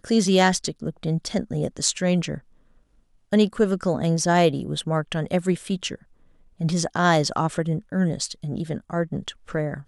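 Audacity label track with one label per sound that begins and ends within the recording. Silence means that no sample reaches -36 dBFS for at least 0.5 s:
3.320000	5.950000	sound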